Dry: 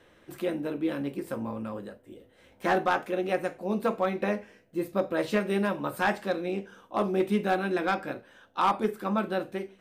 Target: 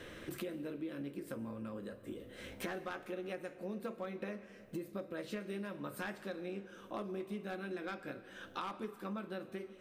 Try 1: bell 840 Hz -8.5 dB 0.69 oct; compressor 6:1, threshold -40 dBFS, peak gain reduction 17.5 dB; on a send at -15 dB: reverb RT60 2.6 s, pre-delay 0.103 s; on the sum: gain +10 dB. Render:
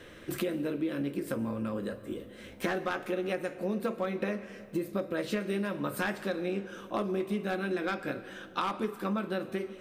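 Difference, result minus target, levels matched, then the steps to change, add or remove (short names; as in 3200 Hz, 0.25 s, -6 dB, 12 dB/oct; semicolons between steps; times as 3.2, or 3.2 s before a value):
compressor: peak gain reduction -10 dB
change: compressor 6:1, threshold -52 dBFS, peak gain reduction 27.5 dB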